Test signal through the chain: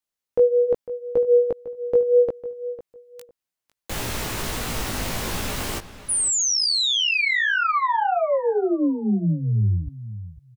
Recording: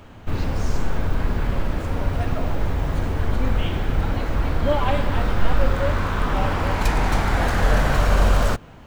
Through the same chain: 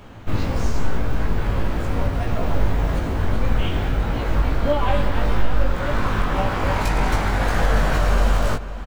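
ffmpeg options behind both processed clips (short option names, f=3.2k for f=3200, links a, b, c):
-filter_complex "[0:a]alimiter=limit=-11.5dB:level=0:latency=1:release=444,flanger=delay=17:depth=2.4:speed=1.7,asplit=2[a][b];[b]adelay=502,lowpass=f=4.2k:p=1,volume=-14dB,asplit=2[c][d];[d]adelay=502,lowpass=f=4.2k:p=1,volume=0.2[e];[c][e]amix=inputs=2:normalize=0[f];[a][f]amix=inputs=2:normalize=0,volume=5.5dB"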